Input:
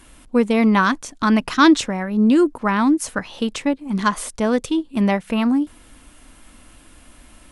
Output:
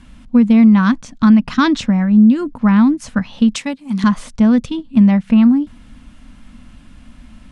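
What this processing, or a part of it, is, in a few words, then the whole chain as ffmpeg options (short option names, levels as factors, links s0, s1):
jukebox: -filter_complex "[0:a]lowpass=5500,lowshelf=f=280:t=q:w=3:g=7.5,acompressor=threshold=0.447:ratio=4,asettb=1/sr,asplit=3[s0][s1][s2];[s0]atrim=end=3.554[s3];[s1]atrim=start=3.55:end=4.04,asetpts=PTS-STARTPTS,afade=t=in:d=0.004:c=qsin,afade=t=out:st=0.486:d=0.004:c=qsin,aemphasis=mode=production:type=riaa[s4];[s2]atrim=start=4.036[s5];[s3][s4]acrossfade=d=0.004:c1=hsin:c2=qsin[s6];[s6][s5]acrossfade=d=0.004:c1=qsin:c2=hsin"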